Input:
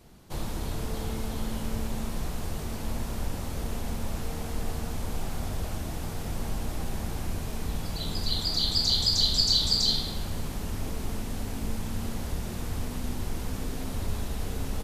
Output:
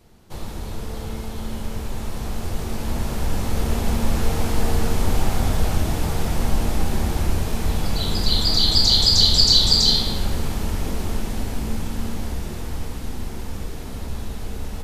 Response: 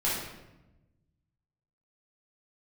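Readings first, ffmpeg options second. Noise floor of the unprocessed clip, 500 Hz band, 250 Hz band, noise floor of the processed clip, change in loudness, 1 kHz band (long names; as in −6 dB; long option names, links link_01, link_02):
−35 dBFS, +8.5 dB, +7.5 dB, −32 dBFS, +9.5 dB, +8.5 dB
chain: -filter_complex "[0:a]dynaudnorm=framelen=230:gausssize=31:maxgain=14dB,asplit=2[link_01][link_02];[1:a]atrim=start_sample=2205,lowpass=7900[link_03];[link_02][link_03]afir=irnorm=-1:irlink=0,volume=-15dB[link_04];[link_01][link_04]amix=inputs=2:normalize=0,volume=-1dB"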